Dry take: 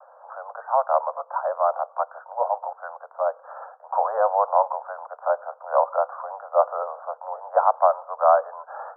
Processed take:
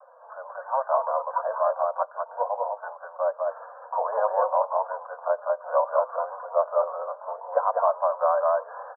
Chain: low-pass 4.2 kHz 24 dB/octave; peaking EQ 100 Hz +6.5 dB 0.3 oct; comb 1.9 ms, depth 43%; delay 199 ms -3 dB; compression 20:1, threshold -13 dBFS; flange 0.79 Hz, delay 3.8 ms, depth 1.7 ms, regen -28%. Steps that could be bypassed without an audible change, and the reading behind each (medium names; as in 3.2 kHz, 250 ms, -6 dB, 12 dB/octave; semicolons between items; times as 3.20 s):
low-pass 4.2 kHz: input has nothing above 1.6 kHz; peaking EQ 100 Hz: input has nothing below 430 Hz